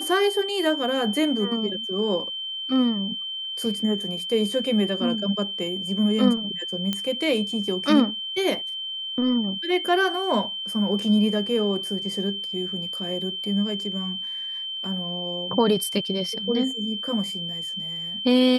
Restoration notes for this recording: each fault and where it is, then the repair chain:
tone 3100 Hz -29 dBFS
6.93 pop -11 dBFS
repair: de-click; notch 3100 Hz, Q 30

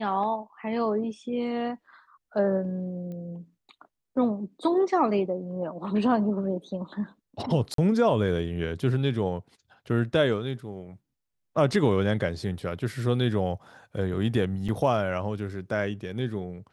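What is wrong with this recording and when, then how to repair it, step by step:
3.12 pop -30 dBFS
7.74–7.78 gap 43 ms
14.68–14.69 gap 5.9 ms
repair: de-click; interpolate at 7.74, 43 ms; interpolate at 14.68, 5.9 ms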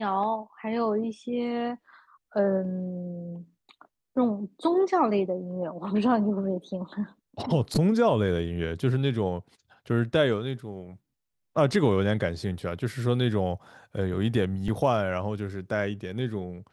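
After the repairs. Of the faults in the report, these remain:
none

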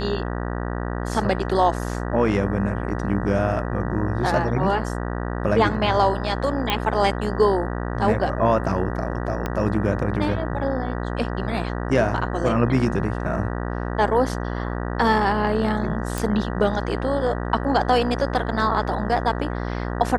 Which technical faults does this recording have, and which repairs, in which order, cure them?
buzz 60 Hz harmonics 32 -27 dBFS
6.7 pop -7 dBFS
9.46 pop -12 dBFS
16.18 pop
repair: de-click; de-hum 60 Hz, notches 32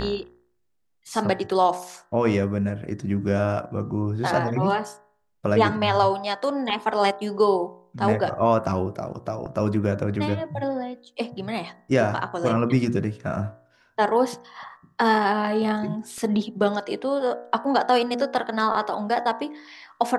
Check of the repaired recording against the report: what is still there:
9.46 pop

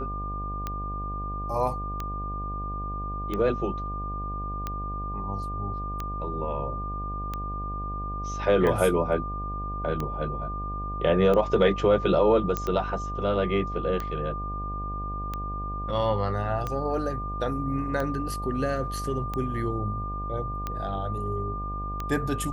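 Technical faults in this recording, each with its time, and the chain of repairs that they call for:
buzz 50 Hz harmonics 16 -34 dBFS
tick 45 rpm -17 dBFS
tone 1200 Hz -33 dBFS
12.57 pop -13 dBFS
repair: de-click; de-hum 50 Hz, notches 16; notch 1200 Hz, Q 30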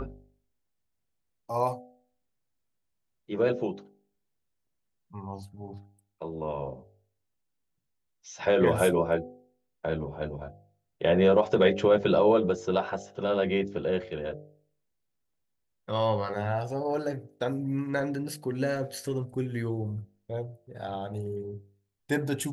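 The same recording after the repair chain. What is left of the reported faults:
none

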